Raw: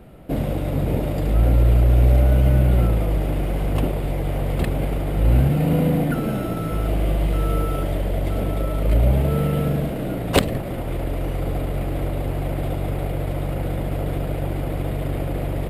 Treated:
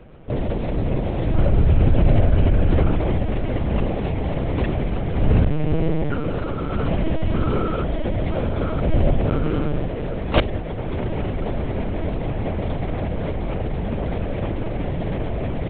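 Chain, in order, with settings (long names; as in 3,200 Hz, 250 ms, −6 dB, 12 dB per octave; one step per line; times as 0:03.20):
linear-prediction vocoder at 8 kHz pitch kept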